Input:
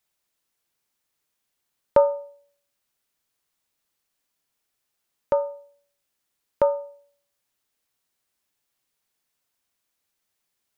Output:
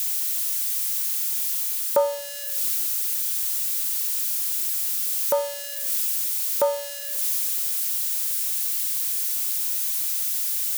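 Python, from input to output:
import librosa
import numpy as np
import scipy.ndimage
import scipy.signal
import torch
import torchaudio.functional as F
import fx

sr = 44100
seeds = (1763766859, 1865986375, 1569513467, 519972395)

y = x + 0.5 * 10.0 ** (-21.5 / 20.0) * np.diff(np.sign(x), prepend=np.sign(x[:1]))
y = fx.rider(y, sr, range_db=5, speed_s=0.5)
y = fx.highpass(y, sr, hz=410.0, slope=6)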